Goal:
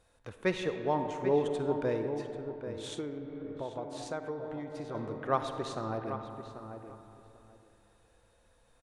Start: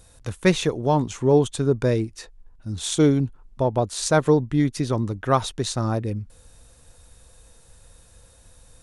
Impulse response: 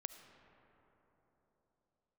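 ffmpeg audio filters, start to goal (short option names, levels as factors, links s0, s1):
-filter_complex "[1:a]atrim=start_sample=2205,asetrate=61740,aresample=44100[s0];[0:a][s0]afir=irnorm=-1:irlink=0,asettb=1/sr,asplit=3[s1][s2][s3];[s1]atrim=end=2.934[s4];[s2]atrim=start=2.93:end=4.95,asetpts=PTS-STARTPTS,afade=t=in:d=0.004:c=qsin,afade=t=out:st=2.016:d=0.004:c=qsin,acompressor=threshold=0.0251:ratio=6[s5];[s3]atrim=start=4.946[s6];[s4][s5]acrossfade=d=0.004:c1=hsin:c2=qsin[s7];[s7][s6]acrossfade=d=0.004:c1=qsin:c2=hsin,bass=f=250:g=-10,treble=f=4000:g=-13,asplit=2[s8][s9];[s9]adelay=789,lowpass=f=2500:p=1,volume=0.335,asplit=2[s10][s11];[s11]adelay=789,lowpass=f=2500:p=1,volume=0.17[s12];[s8][s10][s12]amix=inputs=3:normalize=0,volume=0.891"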